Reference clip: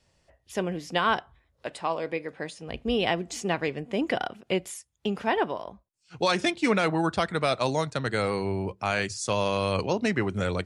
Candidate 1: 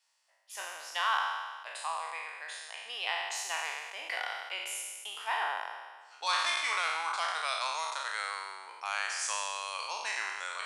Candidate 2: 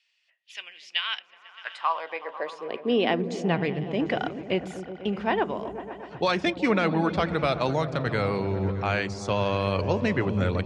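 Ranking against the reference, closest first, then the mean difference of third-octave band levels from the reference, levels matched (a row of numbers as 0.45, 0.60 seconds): 2, 1; 6.5, 16.0 decibels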